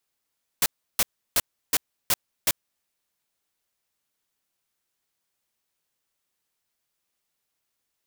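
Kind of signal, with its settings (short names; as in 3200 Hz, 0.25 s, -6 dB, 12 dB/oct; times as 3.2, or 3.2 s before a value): noise bursts white, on 0.04 s, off 0.33 s, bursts 6, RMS -20.5 dBFS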